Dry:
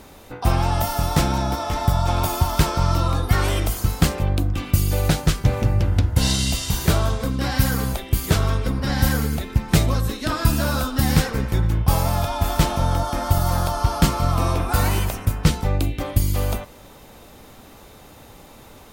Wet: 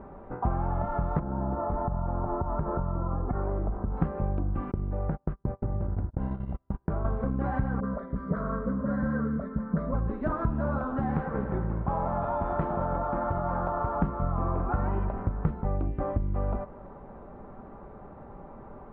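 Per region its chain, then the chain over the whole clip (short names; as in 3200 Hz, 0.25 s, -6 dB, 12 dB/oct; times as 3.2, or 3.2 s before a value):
1.19–3.97 LPF 1200 Hz + compressor 4:1, threshold -22 dBFS
4.71–7.05 LPF 2000 Hz 6 dB/oct + gate -21 dBFS, range -40 dB + compressor 2.5:1, threshold -25 dBFS
7.8–9.94 HPF 88 Hz + fixed phaser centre 540 Hz, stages 8 + dispersion highs, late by 43 ms, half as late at 1000 Hz
10.78–13.95 low shelf 160 Hz -11.5 dB + echo with dull and thin repeats by turns 0.109 s, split 1500 Hz, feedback 77%, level -12 dB
whole clip: LPF 1300 Hz 24 dB/oct; comb 5.1 ms, depth 34%; compressor 4:1, threshold -25 dBFS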